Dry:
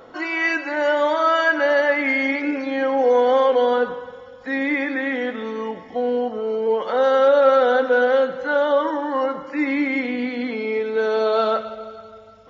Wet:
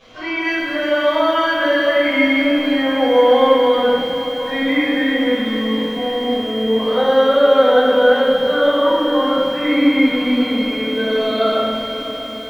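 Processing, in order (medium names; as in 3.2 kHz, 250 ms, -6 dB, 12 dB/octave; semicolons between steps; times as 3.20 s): whistle 3.2 kHz -38 dBFS; tone controls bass +5 dB, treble +13 dB; band-stop 860 Hz, Q 12; small samples zeroed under -32 dBFS; distance through air 240 m; echo that smears into a reverb 561 ms, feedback 65%, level -13 dB; simulated room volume 450 m³, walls mixed, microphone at 5.7 m; bit-crushed delay 255 ms, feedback 80%, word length 5-bit, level -14 dB; trim -9.5 dB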